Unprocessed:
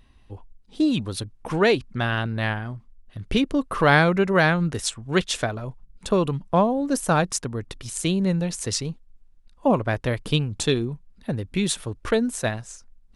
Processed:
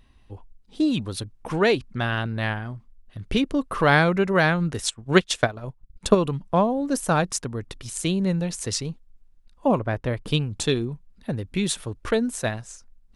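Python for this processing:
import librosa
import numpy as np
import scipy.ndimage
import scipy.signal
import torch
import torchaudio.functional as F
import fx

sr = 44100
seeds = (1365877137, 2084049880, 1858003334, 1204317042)

y = fx.transient(x, sr, attack_db=7, sustain_db=-11, at=(4.88, 6.15))
y = fx.high_shelf(y, sr, hz=2500.0, db=-9.0, at=(9.79, 10.28))
y = F.gain(torch.from_numpy(y), -1.0).numpy()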